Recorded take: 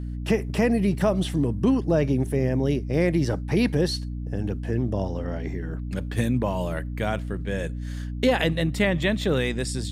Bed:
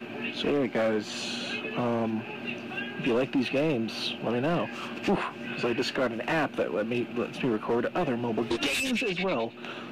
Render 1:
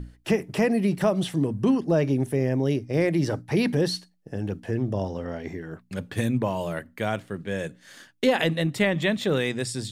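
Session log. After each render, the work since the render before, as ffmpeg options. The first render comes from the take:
-af "bandreject=f=60:t=h:w=6,bandreject=f=120:t=h:w=6,bandreject=f=180:t=h:w=6,bandreject=f=240:t=h:w=6,bandreject=f=300:t=h:w=6"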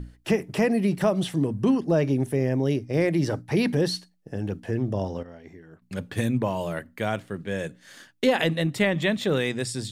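-filter_complex "[0:a]asplit=3[a][b][c];[a]atrim=end=5.232[d];[b]atrim=start=5.228:end=5.822,asetpts=PTS-STARTPTS,volume=-11.5dB[e];[c]atrim=start=5.818[f];[d][e]acrossfade=d=0.004:c1=hsin:c2=hsin[g];[g][f]acrossfade=d=0.004:c1=hsin:c2=hsin"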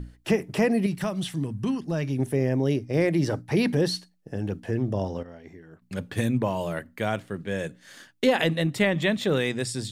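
-filter_complex "[0:a]asettb=1/sr,asplit=3[a][b][c];[a]atrim=end=0.864[d];[b]atrim=start=0.86:end=2.19,asetpts=PTS-STARTPTS,afade=t=in:d=0.004:c=qsin,afade=t=out:st=1.326:d=0.004:c=qsin,equalizer=f=490:t=o:w=2.1:g=-10[e];[c]atrim=start=2.186[f];[d][e]acrossfade=d=0.004:c1=hsin:c2=qsin[g];[g][f]acrossfade=d=0.004:c1=qsin:c2=hsin"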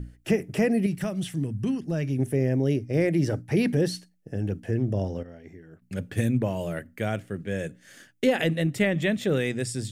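-af "equalizer=f=100:t=o:w=0.67:g=3,equalizer=f=1k:t=o:w=0.67:g=-10,equalizer=f=4k:t=o:w=0.67:g=-7"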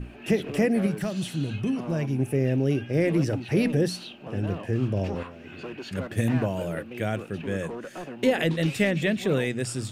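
-filter_complex "[1:a]volume=-10dB[a];[0:a][a]amix=inputs=2:normalize=0"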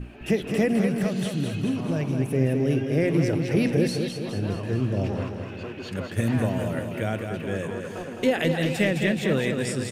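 -af "aecho=1:1:211|422|633|844|1055|1266|1477:0.501|0.286|0.163|0.0928|0.0529|0.0302|0.0172"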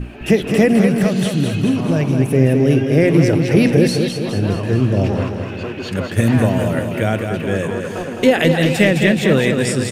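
-af "volume=9.5dB,alimiter=limit=-1dB:level=0:latency=1"

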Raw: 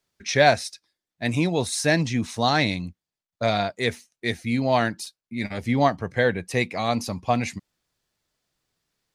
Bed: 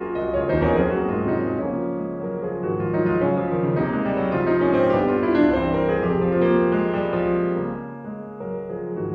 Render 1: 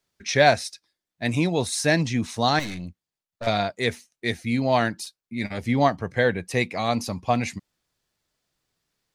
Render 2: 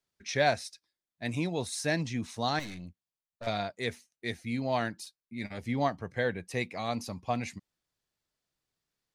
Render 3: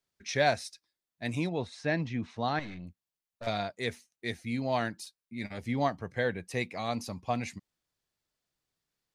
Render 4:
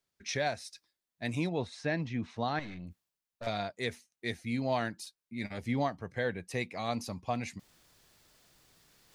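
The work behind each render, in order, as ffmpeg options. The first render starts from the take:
-filter_complex "[0:a]asettb=1/sr,asplit=3[a][b][c];[a]atrim=end=2.594[d];[b]atrim=start=2.59:end=3.47,asetpts=PTS-STARTPTS,afade=t=in:d=0.004:c=qsin,afade=t=out:st=0.876:d=0.004:c=qsin,aeval=exprs='(tanh(25.1*val(0)+0.3)-tanh(0.3))/25.1':c=same[e];[c]atrim=start=3.466[f];[d][e]acrossfade=d=0.004:c1=hsin:c2=qsin[g];[g][f]acrossfade=d=0.004:c1=qsin:c2=hsin"
-af "volume=-9dB"
-filter_complex "[0:a]asettb=1/sr,asplit=3[a][b][c];[a]atrim=end=1.494[d];[b]atrim=start=1.49:end=2.87,asetpts=PTS-STARTPTS,afade=t=in:d=0.004:c=qsin,afade=t=out:st=1.376:d=0.004:c=qsin,lowpass=2.9k[e];[c]atrim=start=2.866[f];[d][e]acrossfade=d=0.004:c1=hsin:c2=qsin[g];[g][f]acrossfade=d=0.004:c1=qsin:c2=hsin"
-af "alimiter=limit=-20dB:level=0:latency=1:release=440,areverse,acompressor=mode=upward:threshold=-46dB:ratio=2.5,areverse"

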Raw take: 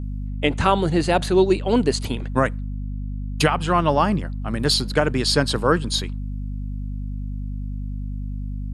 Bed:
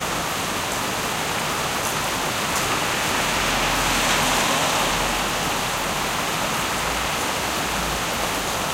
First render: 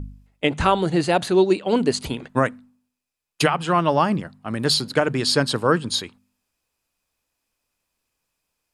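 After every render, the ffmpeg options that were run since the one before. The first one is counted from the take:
-af "bandreject=f=50:t=h:w=4,bandreject=f=100:t=h:w=4,bandreject=f=150:t=h:w=4,bandreject=f=200:t=h:w=4,bandreject=f=250:t=h:w=4"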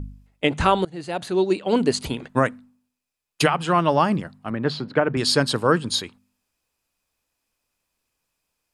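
-filter_complex "[0:a]asettb=1/sr,asplit=3[a][b][c];[a]atrim=end=4.504[d];[b]atrim=start=4.5:end=5.17,asetpts=PTS-STARTPTS,afade=t=in:d=0.004:c=qsin,afade=t=out:st=0.666:d=0.004:c=qsin,highpass=100,lowpass=2.1k[e];[c]atrim=start=5.166[f];[d][e]acrossfade=d=0.004:c1=hsin:c2=qsin[g];[g][f]acrossfade=d=0.004:c1=qsin:c2=hsin,asplit=2[h][i];[h]atrim=end=0.85,asetpts=PTS-STARTPTS,afade=t=out:st=0.846:d=0.004:c=hsin:silence=0.0707946[j];[i]atrim=start=0.85,asetpts=PTS-STARTPTS,afade=t=in:d=0.91:silence=0.0707946[k];[j][k]concat=n=2:v=0:a=1"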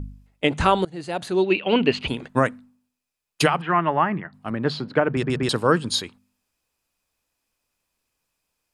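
-filter_complex "[0:a]asettb=1/sr,asplit=3[a][b][c];[a]atrim=end=1.444[d];[b]atrim=start=1.44:end=2.08,asetpts=PTS-STARTPTS,afade=t=in:d=0.004:c=qsin,afade=t=out:st=0.636:d=0.004:c=qsin,lowpass=f=2.7k:t=q:w=5[e];[c]atrim=start=2.076[f];[d][e]acrossfade=d=0.004:c1=hsin:c2=qsin[g];[g][f]acrossfade=d=0.004:c1=qsin:c2=hsin,asplit=3[h][i][j];[h]afade=t=out:st=3.6:d=0.02[k];[i]highpass=160,equalizer=f=250:t=q:w=4:g=-10,equalizer=f=520:t=q:w=4:g=-10,equalizer=f=1.9k:t=q:w=4:g=8,lowpass=f=2.4k:w=0.5412,lowpass=f=2.4k:w=1.3066,afade=t=in:st=3.6:d=0.02,afade=t=out:st=4.32:d=0.02[l];[j]afade=t=in:st=4.32:d=0.02[m];[k][l][m]amix=inputs=3:normalize=0,asplit=4[n][o][p][q];[n]atrim=end=5.232[r];[o]atrim=start=5.098:end=5.232[s];[p]atrim=start=5.098:end=5.232[t];[q]atrim=start=5.488[u];[r][s]acrossfade=d=0.004:c1=hsin:c2=hsin[v];[v][t]acrossfade=d=0.004:c1=hsin:c2=hsin[w];[w][u]acrossfade=d=0.004:c1=hsin:c2=hsin"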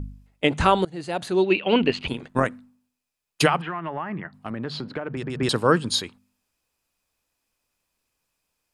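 -filter_complex "[0:a]asettb=1/sr,asplit=3[a][b][c];[a]atrim=end=1.824[d];[b]atrim=start=1.82:end=2.51,asetpts=PTS-STARTPTS,afade=t=in:d=0.004:c=qsin,afade=t=out:st=0.686:d=0.004:c=qsin,tremolo=f=90:d=0.519[e];[c]atrim=start=2.506[f];[d][e]acrossfade=d=0.004:c1=hsin:c2=qsin[g];[g][f]acrossfade=d=0.004:c1=qsin:c2=hsin,asettb=1/sr,asplit=3[h][i][j];[h]atrim=end=3.604[k];[i]atrim=start=3.6:end=5.39,asetpts=PTS-STARTPTS,afade=t=in:d=0.004:c=qsin,afade=t=out:st=1.786:d=0.004:c=qsin,acompressor=threshold=-26dB:ratio=6:attack=3.2:release=140:knee=1:detection=peak[l];[j]atrim=start=5.386[m];[k][l]acrossfade=d=0.004:c1=hsin:c2=qsin[n];[n][m]acrossfade=d=0.004:c1=qsin:c2=hsin"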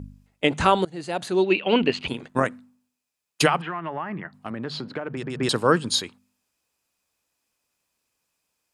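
-af "highpass=f=110:p=1,equalizer=f=7k:t=o:w=0.77:g=2.5"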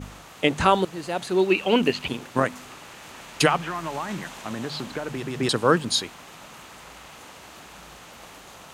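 -filter_complex "[1:a]volume=-21dB[a];[0:a][a]amix=inputs=2:normalize=0"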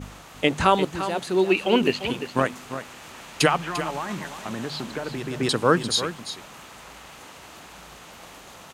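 -af "aecho=1:1:346:0.282"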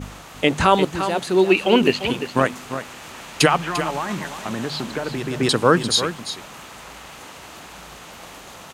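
-af "volume=4.5dB,alimiter=limit=-2dB:level=0:latency=1"

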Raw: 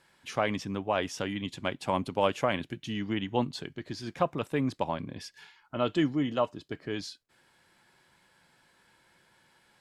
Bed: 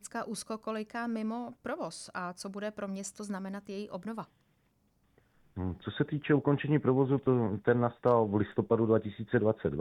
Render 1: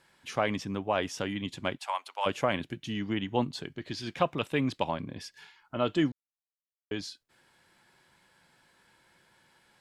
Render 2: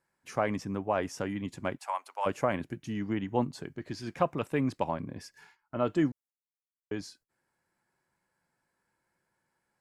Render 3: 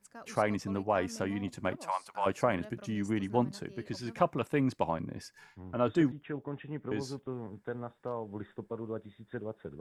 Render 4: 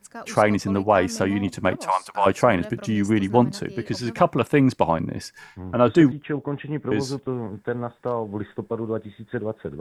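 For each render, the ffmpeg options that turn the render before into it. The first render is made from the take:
-filter_complex "[0:a]asplit=3[a][b][c];[a]afade=t=out:st=1.77:d=0.02[d];[b]highpass=f=790:w=0.5412,highpass=f=790:w=1.3066,afade=t=in:st=1.77:d=0.02,afade=t=out:st=2.25:d=0.02[e];[c]afade=t=in:st=2.25:d=0.02[f];[d][e][f]amix=inputs=3:normalize=0,asettb=1/sr,asplit=3[g][h][i];[g]atrim=end=3.824[j];[h]atrim=start=3.82:end=4.91,asetpts=PTS-STARTPTS,afade=t=in:d=0.004:c=qsin,afade=t=out:st=1.086:d=0.004:c=qsin,equalizer=f=3k:w=1.2:g=8[k];[i]atrim=start=4.906[l];[j][k]acrossfade=d=0.004:c1=hsin:c2=qsin[m];[m][l]acrossfade=d=0.004:c1=qsin:c2=hsin,asplit=3[n][o][p];[n]atrim=end=6.12,asetpts=PTS-STARTPTS,afade=t=out:st=6.116:d=0.004:c=hsin[q];[o]atrim=start=6.12:end=6.91,asetpts=PTS-STARTPTS,volume=0[r];[p]atrim=start=6.91,asetpts=PTS-STARTPTS,afade=t=in:d=0.004:c=hsin[s];[q][r][s]concat=n=3:v=0:a=1"
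-af "agate=range=-13dB:threshold=-56dB:ratio=16:detection=peak,equalizer=f=3.4k:t=o:w=0.9:g=-13.5"
-filter_complex "[1:a]volume=-12dB[a];[0:a][a]amix=inputs=2:normalize=0"
-af "volume=11.5dB,alimiter=limit=-3dB:level=0:latency=1"

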